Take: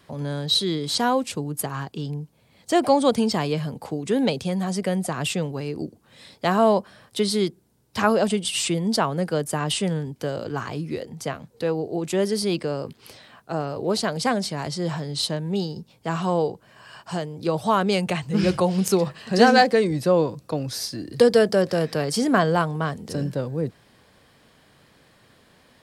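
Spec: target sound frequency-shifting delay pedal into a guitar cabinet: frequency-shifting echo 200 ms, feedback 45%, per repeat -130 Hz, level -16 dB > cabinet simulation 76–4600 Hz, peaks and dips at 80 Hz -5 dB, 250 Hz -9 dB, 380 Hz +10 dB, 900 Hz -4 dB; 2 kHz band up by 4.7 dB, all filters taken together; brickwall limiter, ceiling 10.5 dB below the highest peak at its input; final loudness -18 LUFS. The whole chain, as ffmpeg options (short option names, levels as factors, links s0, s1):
-filter_complex "[0:a]equalizer=f=2000:t=o:g=6.5,alimiter=limit=0.251:level=0:latency=1,asplit=5[s0][s1][s2][s3][s4];[s1]adelay=200,afreqshift=-130,volume=0.158[s5];[s2]adelay=400,afreqshift=-260,volume=0.0716[s6];[s3]adelay=600,afreqshift=-390,volume=0.032[s7];[s4]adelay=800,afreqshift=-520,volume=0.0145[s8];[s0][s5][s6][s7][s8]amix=inputs=5:normalize=0,highpass=76,equalizer=f=80:t=q:w=4:g=-5,equalizer=f=250:t=q:w=4:g=-9,equalizer=f=380:t=q:w=4:g=10,equalizer=f=900:t=q:w=4:g=-4,lowpass=f=4600:w=0.5412,lowpass=f=4600:w=1.3066,volume=1.88"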